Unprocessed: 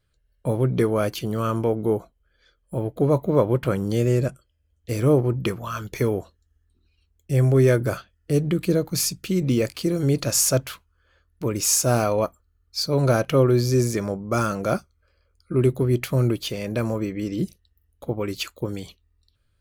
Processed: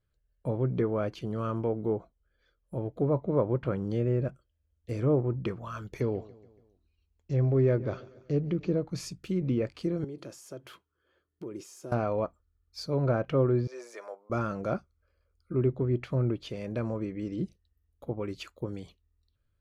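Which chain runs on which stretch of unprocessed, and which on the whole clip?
0:06.00–0:08.81: parametric band 1,500 Hz −4.5 dB 0.58 octaves + repeating echo 142 ms, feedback 53%, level −20 dB + bad sample-rate conversion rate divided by 3×, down none, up filtered
0:10.04–0:11.92: high-pass filter 140 Hz + downward compressor, threshold −33 dBFS + hollow resonant body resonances 360/3,200 Hz, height 11 dB, ringing for 35 ms
0:13.67–0:14.30: high-pass filter 570 Hz 24 dB per octave + high-shelf EQ 4,100 Hz −6 dB
whole clip: high-shelf EQ 2,500 Hz −10 dB; treble cut that deepens with the level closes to 2,400 Hz, closed at −16 dBFS; level −7 dB

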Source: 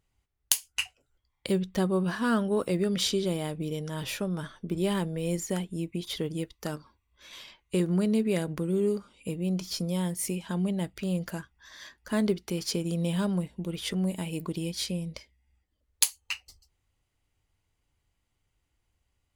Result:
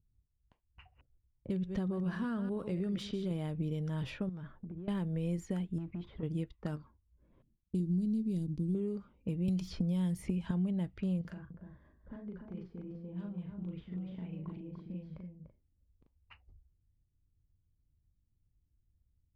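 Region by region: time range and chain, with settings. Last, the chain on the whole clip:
0:00.65–0:03.31: delay that plays each chunk backwards 123 ms, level −12 dB + downward compressor 1.5 to 1, threshold −31 dBFS
0:04.29–0:04.88: downward compressor 8 to 1, threshold −39 dBFS + hard clipping −36.5 dBFS
0:05.78–0:06.23: low-pass filter 3,000 Hz 6 dB per octave + downward compressor, threshold −40 dBFS + leveller curve on the samples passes 2
0:07.42–0:08.75: mu-law and A-law mismatch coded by A + drawn EQ curve 310 Hz 0 dB, 560 Hz −17 dB, 1,600 Hz −28 dB, 4,400 Hz 0 dB
0:09.48–0:10.51: low-shelf EQ 180 Hz +6.5 dB + multiband upward and downward compressor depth 100%
0:11.21–0:16.18: downward compressor 16 to 1, threshold −40 dBFS + double-tracking delay 39 ms −2.5 dB + single-tap delay 294 ms −5 dB
whole clip: downward compressor 6 to 1, threshold −29 dBFS; bass and treble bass +10 dB, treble −11 dB; low-pass that shuts in the quiet parts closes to 300 Hz, open at −25.5 dBFS; level −7 dB

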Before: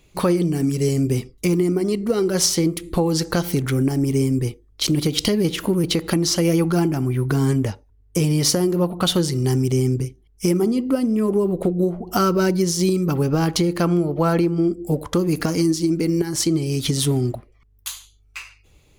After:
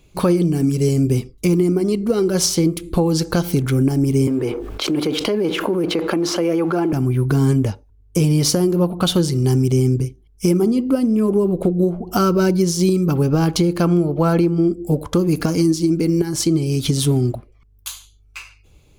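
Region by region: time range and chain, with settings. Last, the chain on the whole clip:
0:04.27–0:06.93: mu-law and A-law mismatch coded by mu + three-way crossover with the lows and the highs turned down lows −21 dB, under 290 Hz, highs −15 dB, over 2,500 Hz + envelope flattener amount 70%
whole clip: low-shelf EQ 430 Hz +4 dB; notch filter 1,900 Hz, Q 9.2

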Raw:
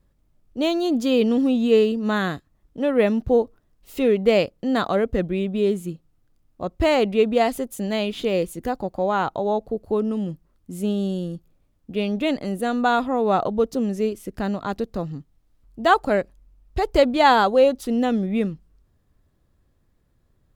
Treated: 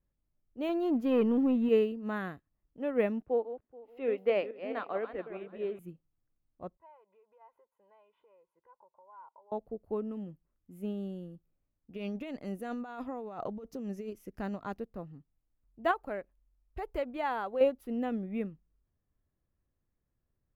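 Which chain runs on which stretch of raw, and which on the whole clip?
0:00.69–0:01.69: high-shelf EQ 3,400 Hz −7.5 dB + leveller curve on the samples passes 1
0:03.22–0:05.79: feedback delay that plays each chunk backwards 215 ms, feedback 46%, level −7.5 dB + three-way crossover with the lows and the highs turned down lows −18 dB, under 290 Hz, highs −16 dB, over 5,200 Hz + one half of a high-frequency compander decoder only
0:06.77–0:09.52: comb filter 2 ms, depth 90% + downward compressor 5 to 1, threshold −26 dBFS + resonant band-pass 950 Hz, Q 6.2
0:11.93–0:14.79: parametric band 5,800 Hz +12 dB 0.83 octaves + compressor whose output falls as the input rises −24 dBFS
0:15.91–0:17.61: parametric band 140 Hz −6 dB 1.9 octaves + downward compressor 2 to 1, threshold −20 dBFS
whole clip: flat-topped bell 5,600 Hz −12.5 dB; expander for the loud parts 1.5 to 1, over −30 dBFS; level −8 dB

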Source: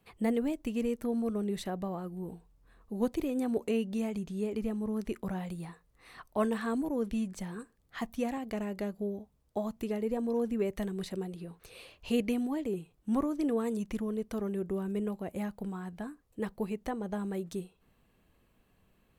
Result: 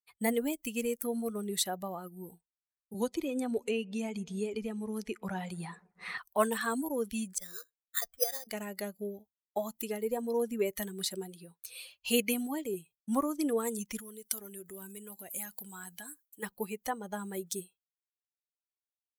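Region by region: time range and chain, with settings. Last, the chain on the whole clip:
0:02.94–0:06.18: high-frequency loss of the air 51 metres + bucket-brigade delay 126 ms, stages 2,048, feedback 77%, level −23 dB + multiband upward and downward compressor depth 70%
0:07.38–0:08.47: phaser with its sweep stopped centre 890 Hz, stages 6 + bad sample-rate conversion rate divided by 8×, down filtered, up hold
0:13.99–0:16.43: high-shelf EQ 2,400 Hz +10.5 dB + downward compressor 3 to 1, threshold −40 dBFS + notch filter 1,200 Hz, Q 26
whole clip: spectral dynamics exaggerated over time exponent 1.5; RIAA equalisation recording; downward expander −56 dBFS; level +6 dB

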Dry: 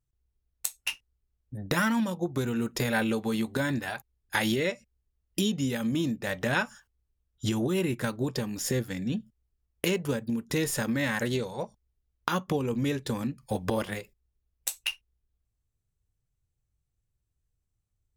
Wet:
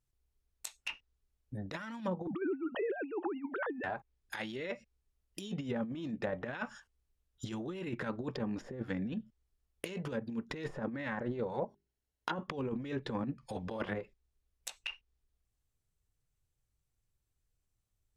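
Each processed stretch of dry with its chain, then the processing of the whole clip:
0:02.27–0:03.84: three sine waves on the formant tracks + upward compression, threshold −30 dBFS
0:11.64–0:12.43: mains-hum notches 50/100/150/200/250/300/350/400 Hz + notch comb filter 1,200 Hz
whole clip: compressor whose output falls as the input rises −31 dBFS, ratio −0.5; parametric band 80 Hz −6 dB 2.8 octaves; treble cut that deepens with the level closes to 950 Hz, closed at −28 dBFS; level −2.5 dB

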